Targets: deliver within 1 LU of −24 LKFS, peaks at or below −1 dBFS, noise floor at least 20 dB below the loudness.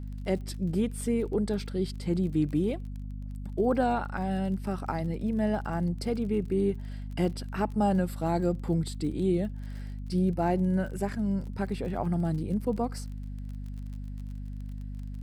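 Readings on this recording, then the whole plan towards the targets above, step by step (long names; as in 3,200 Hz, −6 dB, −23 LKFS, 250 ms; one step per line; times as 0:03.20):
crackle rate 32 per second; mains hum 50 Hz; hum harmonics up to 250 Hz; level of the hum −35 dBFS; integrated loudness −30.0 LKFS; sample peak −14.5 dBFS; target loudness −24.0 LKFS
→ click removal
mains-hum notches 50/100/150/200/250 Hz
level +6 dB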